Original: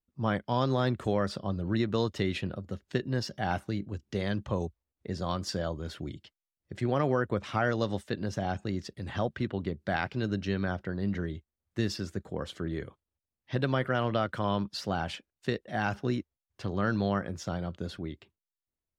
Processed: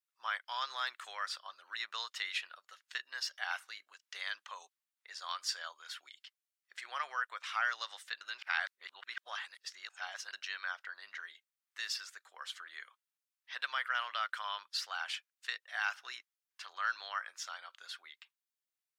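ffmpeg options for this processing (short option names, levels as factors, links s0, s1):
-filter_complex "[0:a]asplit=3[s0][s1][s2];[s0]atrim=end=8.212[s3];[s1]atrim=start=8.208:end=10.332,asetpts=PTS-STARTPTS,areverse[s4];[s2]atrim=start=10.328[s5];[s3][s4]acrossfade=d=0.004:c1=hsin:c2=hsin[s6];[s6][s5]acrossfade=d=0.004:c1=hsin:c2=hsin,highpass=f=1200:w=0.5412,highpass=f=1200:w=1.3066,volume=1.12"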